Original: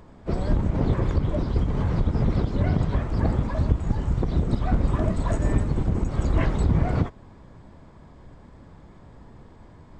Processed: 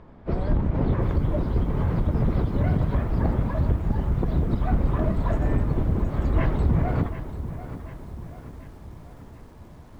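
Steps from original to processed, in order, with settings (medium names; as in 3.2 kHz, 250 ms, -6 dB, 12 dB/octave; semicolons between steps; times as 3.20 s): de-hum 98.47 Hz, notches 5; in parallel at -8 dB: wavefolder -16.5 dBFS; on the sum: Bessel low-pass 2.6 kHz, order 2; bit-crushed delay 739 ms, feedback 55%, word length 8-bit, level -12 dB; trim -2.5 dB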